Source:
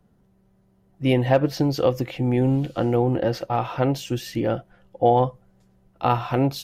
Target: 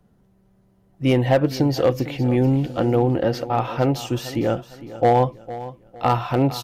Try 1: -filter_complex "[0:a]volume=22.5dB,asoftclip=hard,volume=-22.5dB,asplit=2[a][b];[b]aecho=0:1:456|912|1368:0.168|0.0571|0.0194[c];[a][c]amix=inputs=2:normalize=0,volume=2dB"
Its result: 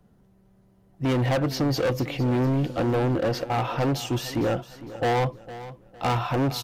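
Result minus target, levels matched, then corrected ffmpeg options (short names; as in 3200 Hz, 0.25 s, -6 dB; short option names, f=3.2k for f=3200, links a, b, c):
overloaded stage: distortion +15 dB
-filter_complex "[0:a]volume=11.5dB,asoftclip=hard,volume=-11.5dB,asplit=2[a][b];[b]aecho=0:1:456|912|1368:0.168|0.0571|0.0194[c];[a][c]amix=inputs=2:normalize=0,volume=2dB"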